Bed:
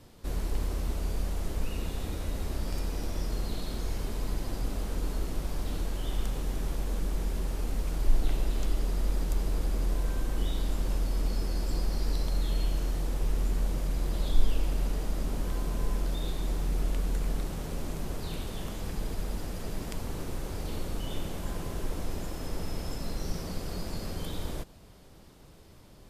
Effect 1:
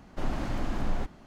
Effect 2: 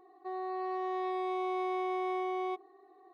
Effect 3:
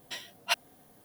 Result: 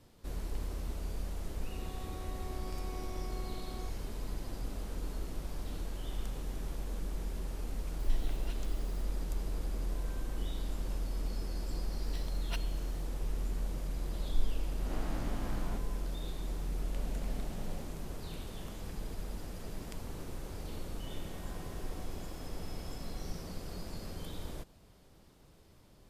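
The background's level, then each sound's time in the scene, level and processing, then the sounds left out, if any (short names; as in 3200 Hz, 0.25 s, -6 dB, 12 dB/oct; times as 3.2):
bed -7 dB
1.34 add 2 -15 dB + opening faded in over 0.61 s
7.99 add 3 -3.5 dB + compressor 4:1, threshold -50 dBFS
12.02 add 3 -15 dB
14.73 add 1 -9.5 dB + spectral swells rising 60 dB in 0.63 s
16.78 add 1 -10.5 dB + fixed phaser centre 330 Hz, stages 6
20.77 add 2 -16 dB + wavefolder -39.5 dBFS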